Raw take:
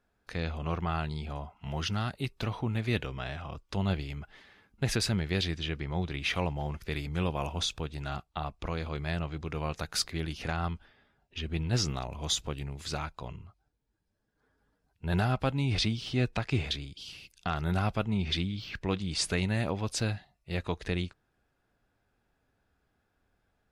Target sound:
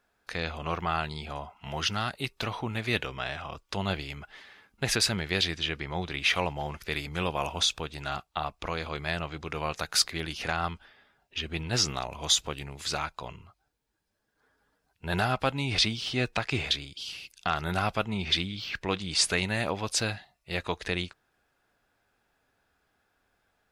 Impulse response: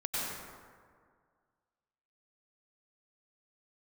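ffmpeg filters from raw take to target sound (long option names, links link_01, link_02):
-af "lowshelf=frequency=370:gain=-11.5,volume=6.5dB"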